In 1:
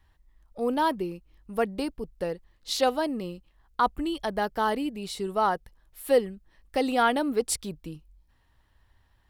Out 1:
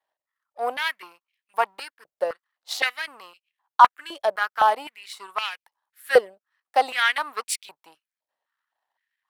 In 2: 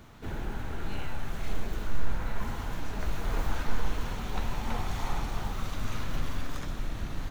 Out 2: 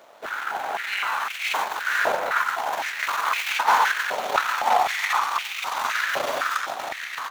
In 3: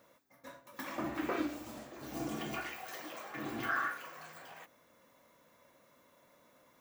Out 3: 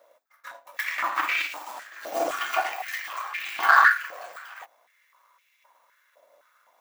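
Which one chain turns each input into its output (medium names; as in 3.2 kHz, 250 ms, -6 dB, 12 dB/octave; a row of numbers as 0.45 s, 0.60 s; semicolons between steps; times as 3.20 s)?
power-law waveshaper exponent 1.4; step-sequenced high-pass 3.9 Hz 610–2400 Hz; normalise loudness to -24 LUFS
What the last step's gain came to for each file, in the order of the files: +5.0 dB, +15.5 dB, +15.0 dB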